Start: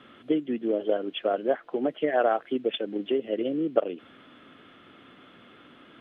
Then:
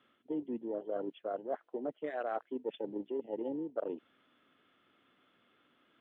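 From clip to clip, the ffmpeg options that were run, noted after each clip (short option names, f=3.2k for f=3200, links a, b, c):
-af "afwtdn=0.0224,lowshelf=f=370:g=-5.5,areverse,acompressor=threshold=-34dB:ratio=6,areverse"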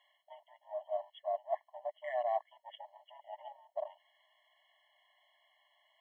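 -af "afftfilt=real='re*eq(mod(floor(b*sr/1024/560),2),1)':imag='im*eq(mod(floor(b*sr/1024/560),2),1)':win_size=1024:overlap=0.75,volume=4.5dB"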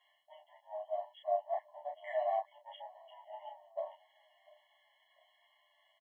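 -filter_complex "[0:a]asplit=2[a][b];[b]adelay=30,volume=-4dB[c];[a][c]amix=inputs=2:normalize=0,asplit=2[d][e];[e]adelay=695,lowpass=f=1.8k:p=1,volume=-23.5dB,asplit=2[f][g];[g]adelay=695,lowpass=f=1.8k:p=1,volume=0.4,asplit=2[h][i];[i]adelay=695,lowpass=f=1.8k:p=1,volume=0.4[j];[d][f][h][j]amix=inputs=4:normalize=0,asplit=2[k][l];[l]adelay=10.8,afreqshift=-0.93[m];[k][m]amix=inputs=2:normalize=1,volume=1.5dB"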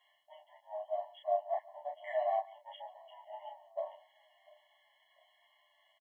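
-af "aecho=1:1:141:0.0841,volume=1dB"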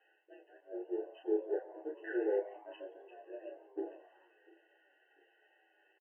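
-filter_complex "[0:a]equalizer=f=460:w=1.5:g=-4.5,asplit=6[a][b][c][d][e][f];[b]adelay=87,afreqshift=110,volume=-19dB[g];[c]adelay=174,afreqshift=220,volume=-23.7dB[h];[d]adelay=261,afreqshift=330,volume=-28.5dB[i];[e]adelay=348,afreqshift=440,volume=-33.2dB[j];[f]adelay=435,afreqshift=550,volume=-37.9dB[k];[a][g][h][i][j][k]amix=inputs=6:normalize=0,highpass=f=540:t=q:w=0.5412,highpass=f=540:t=q:w=1.307,lowpass=f=2.8k:t=q:w=0.5176,lowpass=f=2.8k:t=q:w=0.7071,lowpass=f=2.8k:t=q:w=1.932,afreqshift=-270,volume=2dB"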